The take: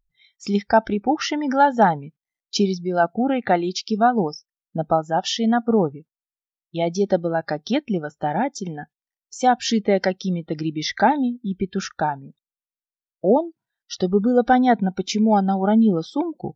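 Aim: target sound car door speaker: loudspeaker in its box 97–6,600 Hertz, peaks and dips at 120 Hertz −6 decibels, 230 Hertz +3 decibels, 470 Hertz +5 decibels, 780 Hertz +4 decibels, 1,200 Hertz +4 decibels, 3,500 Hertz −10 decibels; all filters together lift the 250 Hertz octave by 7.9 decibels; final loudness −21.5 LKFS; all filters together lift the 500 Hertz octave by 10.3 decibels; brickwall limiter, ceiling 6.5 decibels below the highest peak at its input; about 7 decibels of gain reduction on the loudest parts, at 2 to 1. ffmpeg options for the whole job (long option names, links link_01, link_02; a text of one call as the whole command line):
ffmpeg -i in.wav -af "equalizer=frequency=250:width_type=o:gain=5.5,equalizer=frequency=500:width_type=o:gain=7.5,acompressor=threshold=-17dB:ratio=2,alimiter=limit=-11.5dB:level=0:latency=1,highpass=97,equalizer=frequency=120:width_type=q:width=4:gain=-6,equalizer=frequency=230:width_type=q:width=4:gain=3,equalizer=frequency=470:width_type=q:width=4:gain=5,equalizer=frequency=780:width_type=q:width=4:gain=4,equalizer=frequency=1200:width_type=q:width=4:gain=4,equalizer=frequency=3500:width_type=q:width=4:gain=-10,lowpass=frequency=6600:width=0.5412,lowpass=frequency=6600:width=1.3066,volume=-2dB" out.wav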